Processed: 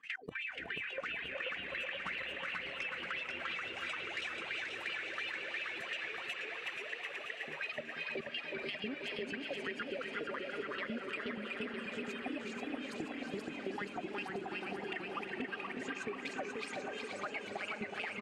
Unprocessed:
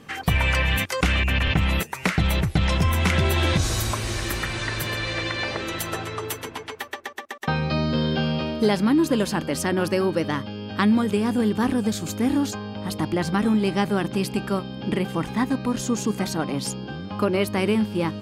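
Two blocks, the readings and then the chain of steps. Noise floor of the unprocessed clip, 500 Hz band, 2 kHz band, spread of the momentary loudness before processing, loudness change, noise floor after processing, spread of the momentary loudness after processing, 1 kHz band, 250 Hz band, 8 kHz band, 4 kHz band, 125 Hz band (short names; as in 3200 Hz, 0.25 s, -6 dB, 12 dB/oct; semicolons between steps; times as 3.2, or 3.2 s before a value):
-39 dBFS, -16.5 dB, -9.5 dB, 9 LU, -16.0 dB, -47 dBFS, 3 LU, -16.0 dB, -22.5 dB, -25.0 dB, -13.5 dB, -32.5 dB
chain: bin magnitudes rounded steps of 15 dB; low shelf 140 Hz -7.5 dB; wah 2.9 Hz 400–2800 Hz, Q 12; reverb removal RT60 0.78 s; graphic EQ 125/250/500/1000/2000/4000/8000 Hz +4/+6/-4/-7/+6/+4/+10 dB; level quantiser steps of 21 dB; feedback echo 0.368 s, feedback 52%, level -10 dB; limiter -39 dBFS, peak gain reduction 10 dB; diffused feedback echo 0.45 s, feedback 69%, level -13 dB; compressor, threshold -52 dBFS, peak gain reduction 9.5 dB; warbling echo 0.481 s, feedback 65%, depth 127 cents, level -4 dB; gain +13.5 dB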